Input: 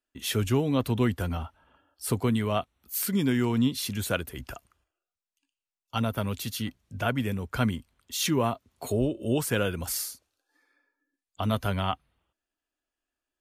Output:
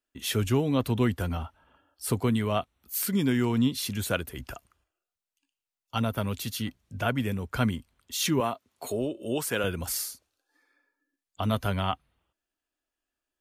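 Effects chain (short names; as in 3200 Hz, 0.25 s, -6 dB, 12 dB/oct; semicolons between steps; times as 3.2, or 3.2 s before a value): 8.4–9.64 HPF 340 Hz 6 dB/oct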